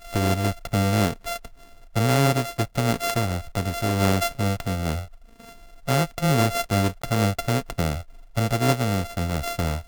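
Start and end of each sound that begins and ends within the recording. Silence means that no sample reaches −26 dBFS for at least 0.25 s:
0:01.96–0:05.00
0:05.88–0:07.98

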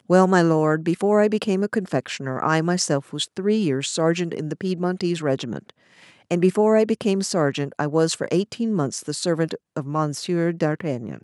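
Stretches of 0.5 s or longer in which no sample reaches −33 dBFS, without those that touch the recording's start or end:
0:05.70–0:06.31

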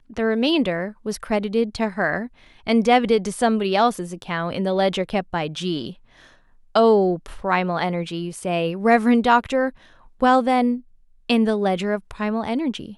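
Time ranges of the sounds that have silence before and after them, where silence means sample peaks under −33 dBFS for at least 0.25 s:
0:02.67–0:05.92
0:06.75–0:09.70
0:10.21–0:10.79

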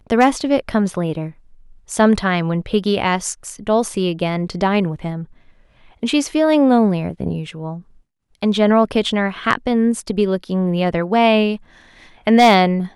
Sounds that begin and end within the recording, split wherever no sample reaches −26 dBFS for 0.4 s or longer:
0:01.91–0:05.23
0:06.03–0:07.78
0:08.42–0:11.56

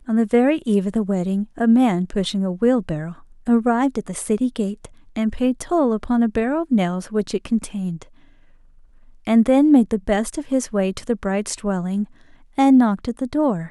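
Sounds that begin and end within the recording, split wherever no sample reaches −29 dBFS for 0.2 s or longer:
0:03.47–0:04.85
0:05.16–0:08.02
0:09.27–0:12.04

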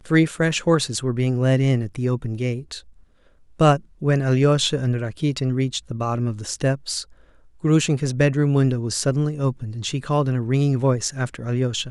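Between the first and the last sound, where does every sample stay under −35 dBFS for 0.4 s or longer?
0:02.79–0:03.60
0:07.03–0:07.64

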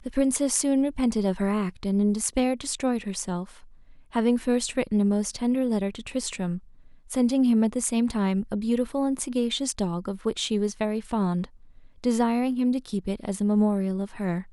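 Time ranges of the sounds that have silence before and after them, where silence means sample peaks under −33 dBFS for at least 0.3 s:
0:04.15–0:06.58
0:07.11–0:11.45

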